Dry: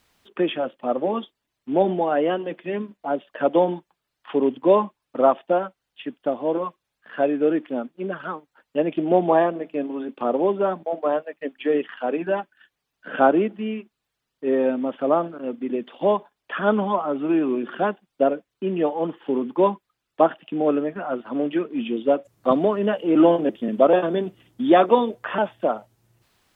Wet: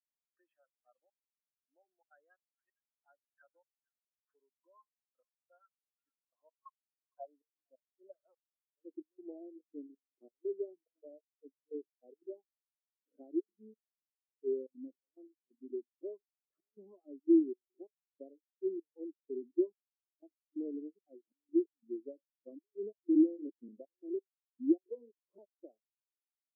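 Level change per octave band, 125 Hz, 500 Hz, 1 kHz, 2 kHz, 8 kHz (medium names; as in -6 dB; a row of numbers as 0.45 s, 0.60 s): under -40 dB, -21.0 dB, under -40 dB, under -40 dB, no reading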